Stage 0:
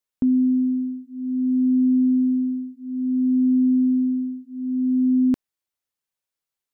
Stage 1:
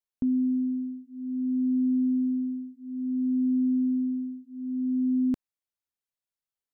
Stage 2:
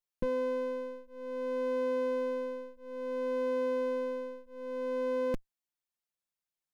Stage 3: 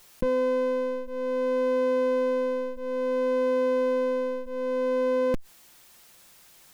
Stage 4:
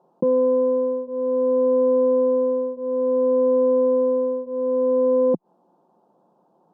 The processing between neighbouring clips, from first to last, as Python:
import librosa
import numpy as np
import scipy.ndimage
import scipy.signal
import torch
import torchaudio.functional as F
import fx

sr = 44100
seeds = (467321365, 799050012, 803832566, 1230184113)

y1 = fx.low_shelf(x, sr, hz=200.0, db=5.0)
y1 = F.gain(torch.from_numpy(y1), -8.5).numpy()
y2 = fx.lower_of_two(y1, sr, delay_ms=5.7)
y3 = fx.env_flatten(y2, sr, amount_pct=50)
y3 = F.gain(torch.from_numpy(y3), 5.5).numpy()
y4 = scipy.signal.sosfilt(scipy.signal.ellip(3, 1.0, 40, [170.0, 900.0], 'bandpass', fs=sr, output='sos'), y3)
y4 = F.gain(torch.from_numpy(y4), 7.0).numpy()